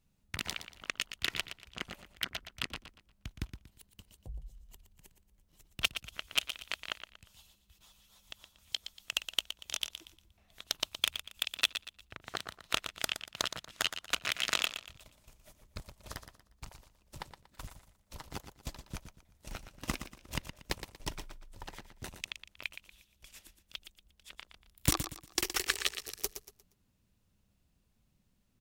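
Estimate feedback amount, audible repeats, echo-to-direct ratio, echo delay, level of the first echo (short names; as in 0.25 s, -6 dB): 32%, 3, -9.5 dB, 0.118 s, -10.0 dB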